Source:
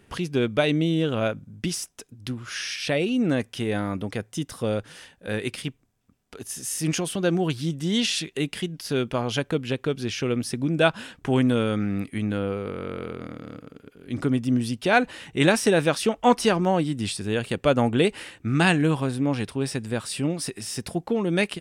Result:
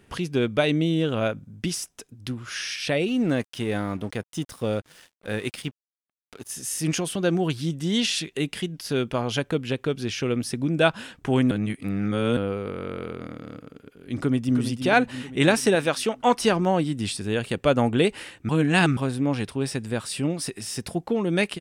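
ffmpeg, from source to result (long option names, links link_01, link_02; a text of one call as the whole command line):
ffmpeg -i in.wav -filter_complex "[0:a]asettb=1/sr,asplit=3[link_01][link_02][link_03];[link_01]atrim=end=3.084[link_04];[link_02]atrim=start=3.08:end=6.52,asetpts=PTS-STARTPTS,afade=type=in:duration=0.004:curve=qsin,afade=type=out:start_time=3.436:duration=0.004:curve=qsin,aeval=exprs='sgn(val(0))*max(abs(val(0))-0.00447,0)':channel_layout=same[link_05];[link_03]atrim=start=6.516[link_06];[link_04][link_05]acrossfade=duration=0.004:curve1=hsin:curve2=qsin[link_07];[link_07][link_06]acrossfade=duration=0.004:curve1=qsin:curve2=hsin,asplit=2[link_08][link_09];[link_09]afade=type=in:start_time=14.15:duration=0.01,afade=type=out:start_time=14.56:duration=0.01,aecho=0:1:330|660|990|1320|1650|1980|2310|2640:0.375837|0.225502|0.135301|0.0811809|0.0487085|0.0292251|0.0175351|0.010521[link_10];[link_08][link_10]amix=inputs=2:normalize=0,asettb=1/sr,asplit=3[link_11][link_12][link_13];[link_11]atrim=end=15.754[link_14];[link_12]atrim=start=15.75:end=16.4,asetpts=PTS-STARTPTS,afade=type=in:duration=0.004:curve=qsin,afade=type=out:start_time=0.646:duration=0.004:curve=qsin,lowshelf=frequency=290:gain=-7[link_15];[link_13]atrim=start=16.396[link_16];[link_14][link_15]acrossfade=duration=0.004:curve1=hsin:curve2=qsin[link_17];[link_17][link_16]acrossfade=duration=0.004:curve1=qsin:curve2=hsin,asplit=5[link_18][link_19][link_20][link_21][link_22];[link_18]atrim=end=11.512[link_23];[link_19]atrim=start=11.508:end=12.372,asetpts=PTS-STARTPTS,areverse[link_24];[link_20]atrim=start=12.368:end=18.492[link_25];[link_21]atrim=start=18.488:end=18.972,asetpts=PTS-STARTPTS,areverse[link_26];[link_22]atrim=start=18.968[link_27];[link_23][link_24]acrossfade=duration=0.004:curve1=hsin:curve2=hsin[link_28];[link_28][link_25]acrossfade=duration=0.004:curve1=hsin:curve2=hsin[link_29];[link_29][link_26]acrossfade=duration=0.004:curve1=hsin:curve2=hsin[link_30];[link_30][link_27]acrossfade=duration=0.004:curve1=hsin:curve2=hsin" out.wav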